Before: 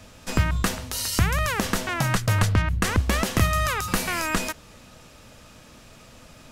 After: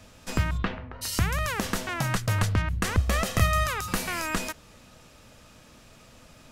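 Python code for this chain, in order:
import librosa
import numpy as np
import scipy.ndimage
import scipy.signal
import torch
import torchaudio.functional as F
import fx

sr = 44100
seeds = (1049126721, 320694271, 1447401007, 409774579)

y = fx.lowpass(x, sr, hz=fx.line((0.57, 4100.0), (1.01, 1500.0)), slope=24, at=(0.57, 1.01), fade=0.02)
y = fx.comb(y, sr, ms=1.6, depth=0.51, at=(2.96, 3.64))
y = y * librosa.db_to_amplitude(-4.0)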